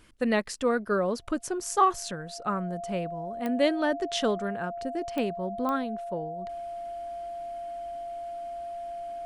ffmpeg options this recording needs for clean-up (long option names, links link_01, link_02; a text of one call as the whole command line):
ffmpeg -i in.wav -af "adeclick=threshold=4,bandreject=frequency=690:width=30" out.wav